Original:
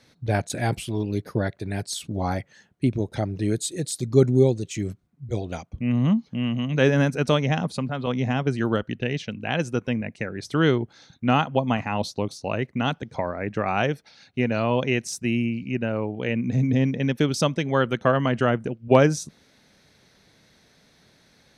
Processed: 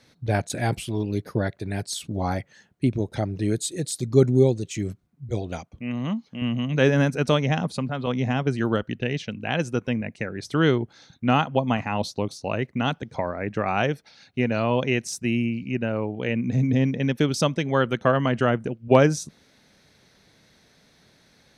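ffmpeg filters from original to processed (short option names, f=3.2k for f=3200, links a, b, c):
-filter_complex "[0:a]asettb=1/sr,asplit=3[a][b][c];[a]atrim=end=5.684[d];[b]atrim=start=5.68:end=6.42,asetpts=PTS-STARTPTS,afade=t=in:d=0.004:c=qsin,afade=t=out:st=0.736:d=0.004:c=qsin,lowshelf=f=240:g=-12[e];[c]atrim=start=6.416[f];[d][e]acrossfade=d=0.004:c1=hsin:c2=qsin[g];[g][f]acrossfade=d=0.004:c1=qsin:c2=hsin"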